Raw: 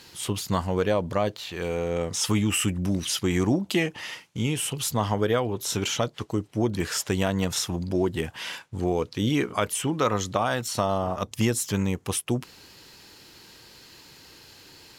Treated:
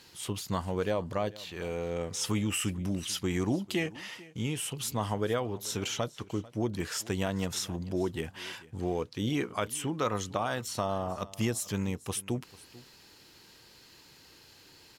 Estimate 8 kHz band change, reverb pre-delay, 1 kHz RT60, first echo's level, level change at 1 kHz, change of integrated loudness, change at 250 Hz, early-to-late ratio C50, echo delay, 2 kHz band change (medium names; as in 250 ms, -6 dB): -6.5 dB, no reverb, no reverb, -20.5 dB, -6.5 dB, -6.5 dB, -6.5 dB, no reverb, 443 ms, -6.5 dB